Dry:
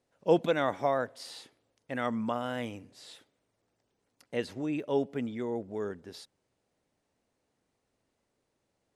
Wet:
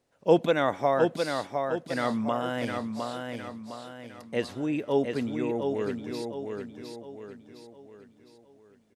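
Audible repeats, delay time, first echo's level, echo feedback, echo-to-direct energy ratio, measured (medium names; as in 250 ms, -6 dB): 5, 709 ms, -5.0 dB, 43%, -4.0 dB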